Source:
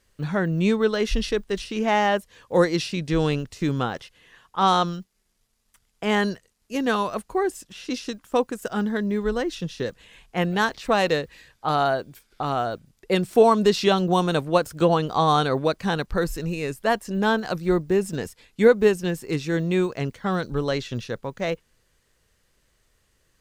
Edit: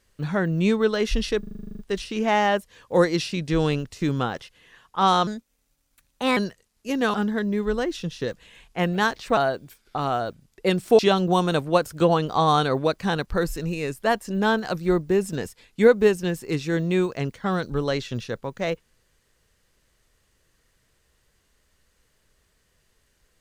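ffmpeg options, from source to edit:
-filter_complex "[0:a]asplit=16[s0][s1][s2][s3][s4][s5][s6][s7][s8][s9][s10][s11][s12][s13][s14][s15];[s0]atrim=end=1.432[s16];[s1]atrim=start=1.388:end=1.432[s17];[s2]atrim=start=1.388:end=1.432[s18];[s3]atrim=start=1.388:end=1.432[s19];[s4]atrim=start=1.388:end=1.432[s20];[s5]atrim=start=1.388:end=1.432[s21];[s6]atrim=start=1.388:end=1.432[s22];[s7]atrim=start=1.388:end=1.432[s23];[s8]atrim=start=1.388:end=1.432[s24];[s9]atrim=start=1.388:end=1.432[s25];[s10]atrim=start=1.388:end=4.874[s26];[s11]atrim=start=4.87:end=6.22,asetpts=PTS-STARTPTS,asetrate=54243,aresample=44100,atrim=end_sample=48402,asetpts=PTS-STARTPTS[s27];[s12]atrim=start=6.216:end=6.992[s28];[s13]atrim=start=8.718:end=10.952[s29];[s14]atrim=start=11.818:end=13.442[s30];[s15]atrim=start=13.788[s31];[s16][s17]acrossfade=d=0.004:c1=hsin:c2=hsin[s32];[s32][s18]acrossfade=d=0.004:c1=hsin:c2=hsin[s33];[s33][s19]acrossfade=d=0.004:c1=hsin:c2=hsin[s34];[s34][s20]acrossfade=d=0.004:c1=hsin:c2=hsin[s35];[s35][s21]acrossfade=d=0.004:c1=hsin:c2=hsin[s36];[s36][s22]acrossfade=d=0.004:c1=hsin:c2=hsin[s37];[s37][s23]acrossfade=d=0.004:c1=hsin:c2=hsin[s38];[s38][s24]acrossfade=d=0.004:c1=hsin:c2=hsin[s39];[s39][s25]acrossfade=d=0.004:c1=hsin:c2=hsin[s40];[s40][s26]acrossfade=d=0.004:c1=hsin:c2=hsin[s41];[s41][s27]acrossfade=d=0.004:c1=hsin:c2=hsin[s42];[s42][s28]acrossfade=d=0.004:c1=hsin:c2=hsin[s43];[s43][s29]acrossfade=d=0.004:c1=hsin:c2=hsin[s44];[s44][s30]acrossfade=d=0.004:c1=hsin:c2=hsin[s45];[s45][s31]acrossfade=d=0.004:c1=hsin:c2=hsin"

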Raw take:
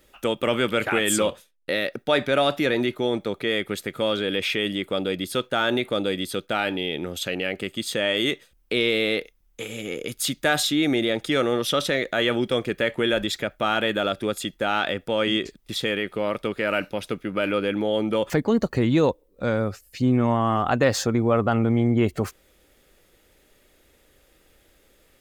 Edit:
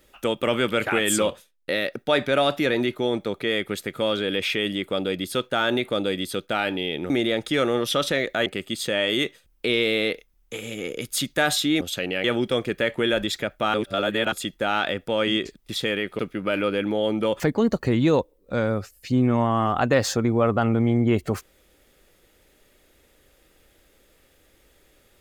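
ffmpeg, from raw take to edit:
-filter_complex "[0:a]asplit=8[s0][s1][s2][s3][s4][s5][s6][s7];[s0]atrim=end=7.102[s8];[s1]atrim=start=10.878:end=12.242[s9];[s2]atrim=start=7.528:end=10.882[s10];[s3]atrim=start=7.098:end=7.532[s11];[s4]atrim=start=12.238:end=13.742[s12];[s5]atrim=start=13.738:end=14.322,asetpts=PTS-STARTPTS,areverse[s13];[s6]atrim=start=14.318:end=16.192[s14];[s7]atrim=start=17.088[s15];[s8][s9]acrossfade=d=0.004:c1=hsin:c2=hsin[s16];[s16][s10]acrossfade=d=0.004:c1=hsin:c2=hsin[s17];[s17][s11]acrossfade=d=0.004:c1=hsin:c2=hsin[s18];[s18][s12]acrossfade=d=0.004:c1=hsin:c2=hsin[s19];[s19][s13]acrossfade=d=0.004:c1=hsin:c2=hsin[s20];[s20][s14]acrossfade=d=0.004:c1=hsin:c2=hsin[s21];[s21][s15]acrossfade=d=0.004:c1=hsin:c2=hsin"

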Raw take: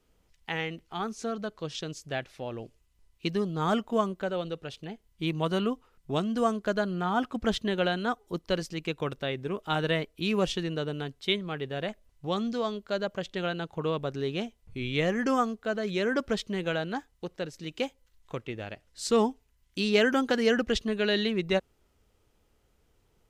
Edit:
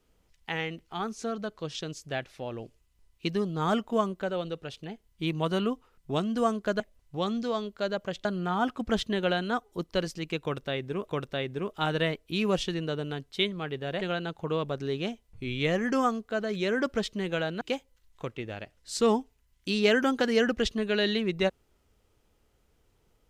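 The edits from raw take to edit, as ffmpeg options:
-filter_complex "[0:a]asplit=6[s0][s1][s2][s3][s4][s5];[s0]atrim=end=6.802[s6];[s1]atrim=start=11.898:end=13.352[s7];[s2]atrim=start=6.798:end=9.632[s8];[s3]atrim=start=8.968:end=11.902[s9];[s4]atrim=start=13.348:end=16.952[s10];[s5]atrim=start=17.708[s11];[s6][s7]acrossfade=d=0.004:c1=hsin:c2=hsin[s12];[s12][s8]acrossfade=d=0.004:c1=hsin:c2=hsin[s13];[s13][s9]acrossfade=d=0.004:c1=hsin:c2=hsin[s14];[s14][s10]acrossfade=d=0.004:c1=hsin:c2=hsin[s15];[s15][s11]acrossfade=d=0.004:c1=hsin:c2=hsin"

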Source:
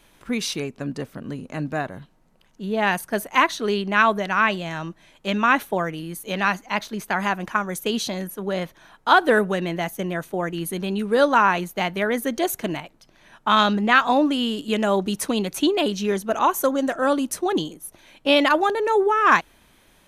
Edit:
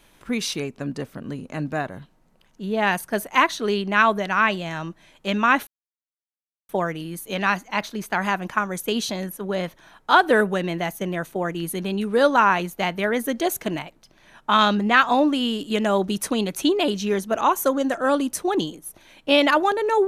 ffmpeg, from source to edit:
-filter_complex "[0:a]asplit=2[s0][s1];[s0]atrim=end=5.67,asetpts=PTS-STARTPTS,afade=t=out:st=5.666:d=0.004:c=hsin,apad=pad_dur=1.02[s2];[s1]atrim=start=5.67,asetpts=PTS-STARTPTS,afade=t=in:d=0.004:c=hsin[s3];[s2][s3]concat=n=2:v=0:a=1"

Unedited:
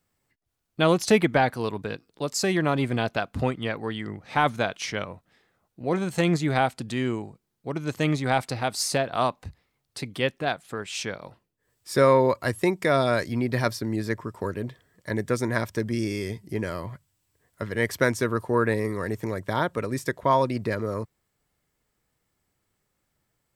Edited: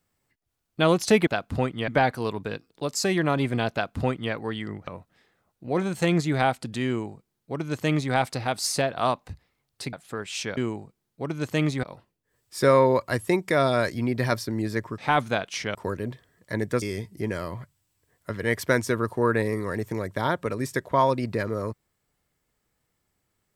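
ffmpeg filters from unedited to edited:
-filter_complex "[0:a]asplit=10[s0][s1][s2][s3][s4][s5][s6][s7][s8][s9];[s0]atrim=end=1.272[s10];[s1]atrim=start=3.108:end=3.722[s11];[s2]atrim=start=1.268:end=4.262[s12];[s3]atrim=start=5.028:end=10.092[s13];[s4]atrim=start=10.528:end=11.172[s14];[s5]atrim=start=7.028:end=8.292[s15];[s6]atrim=start=11.168:end=14.322[s16];[s7]atrim=start=4.258:end=5.032[s17];[s8]atrim=start=14.318:end=15.392[s18];[s9]atrim=start=16.138[s19];[s10][s11]acrossfade=d=0.004:c1=hsin:c2=hsin[s20];[s20][s12]acrossfade=d=0.004:c1=hsin:c2=hsin[s21];[s21][s13]acrossfade=d=0.004:c1=hsin:c2=hsin[s22];[s22][s14]acrossfade=d=0.004:c1=hsin:c2=hsin[s23];[s23][s15]acrossfade=d=0.004:c1=hsin:c2=hsin[s24];[s24][s16]acrossfade=d=0.004:c1=hsin:c2=hsin[s25];[s25][s17]acrossfade=d=0.004:c1=hsin:c2=hsin[s26];[s26][s18]acrossfade=d=0.004:c1=hsin:c2=hsin[s27];[s27][s19]acrossfade=d=0.004:c1=hsin:c2=hsin"

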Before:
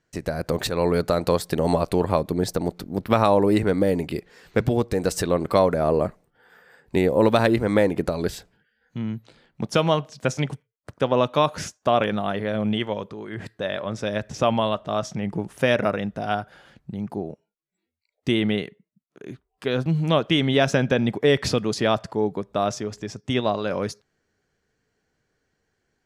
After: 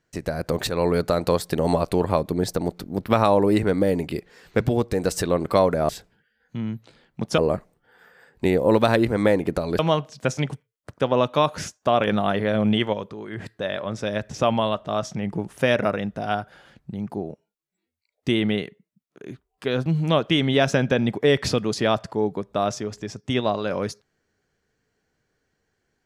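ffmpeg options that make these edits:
-filter_complex "[0:a]asplit=6[s0][s1][s2][s3][s4][s5];[s0]atrim=end=5.892[s6];[s1]atrim=start=8.298:end=9.792[s7];[s2]atrim=start=5.888:end=8.302[s8];[s3]atrim=start=9.788:end=12.072[s9];[s4]atrim=start=12.068:end=12.932,asetpts=PTS-STARTPTS,volume=1.5[s10];[s5]atrim=start=12.928[s11];[s6][s7]acrossfade=d=0.004:c1=hsin:c2=hsin[s12];[s12][s8]acrossfade=d=0.004:c1=hsin:c2=hsin[s13];[s13][s9]acrossfade=d=0.004:c1=hsin:c2=hsin[s14];[s14][s10]acrossfade=d=0.004:c1=hsin:c2=hsin[s15];[s15][s11]acrossfade=d=0.004:c1=hsin:c2=hsin"

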